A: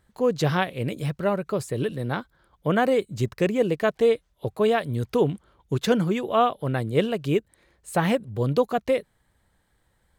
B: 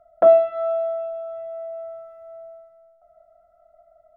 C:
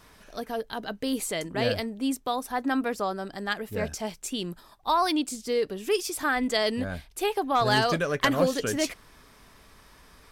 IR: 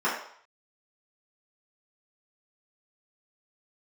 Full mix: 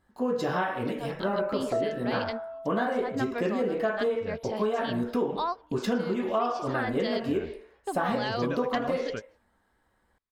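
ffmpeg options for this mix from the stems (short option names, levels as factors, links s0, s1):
-filter_complex "[0:a]volume=0.501,asplit=3[s0][s1][s2];[s1]volume=0.398[s3];[1:a]adelay=1500,volume=0.251[s4];[2:a]dynaudnorm=f=140:g=7:m=5.96,lowpass=f=5300:w=0.5412,lowpass=f=5300:w=1.3066,adelay=500,volume=0.15[s5];[s2]apad=whole_len=476941[s6];[s5][s6]sidechaingate=range=0.01:threshold=0.00178:ratio=16:detection=peak[s7];[3:a]atrim=start_sample=2205[s8];[s3][s8]afir=irnorm=-1:irlink=0[s9];[s0][s4][s7][s9]amix=inputs=4:normalize=0,acompressor=threshold=0.0631:ratio=6"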